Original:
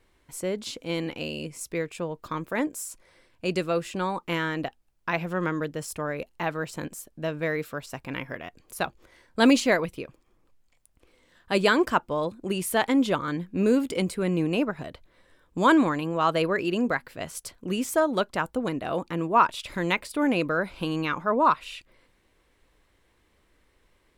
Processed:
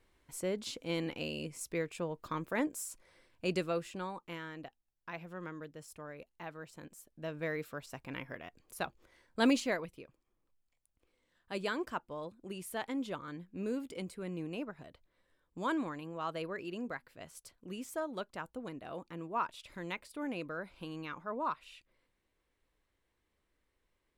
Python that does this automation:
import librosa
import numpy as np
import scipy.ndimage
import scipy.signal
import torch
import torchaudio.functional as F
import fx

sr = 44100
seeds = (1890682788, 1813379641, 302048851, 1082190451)

y = fx.gain(x, sr, db=fx.line((3.53, -6.0), (4.4, -16.5), (6.81, -16.5), (7.42, -9.0), (9.47, -9.0), (9.98, -15.0)))